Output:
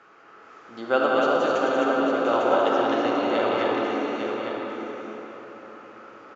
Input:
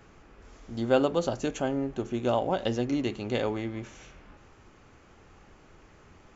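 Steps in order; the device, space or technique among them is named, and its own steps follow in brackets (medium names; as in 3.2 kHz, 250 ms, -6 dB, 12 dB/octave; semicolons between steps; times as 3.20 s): 1.74–2.26 s: high-pass 230 Hz 24 dB/octave; station announcement (band-pass 350–4600 Hz; peaking EQ 1.3 kHz +11 dB 0.54 oct; loudspeakers at several distances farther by 64 m -6 dB, 78 m -11 dB, 89 m -3 dB; reverberation RT60 4.6 s, pre-delay 39 ms, DRR -1.5 dB); delay 852 ms -6.5 dB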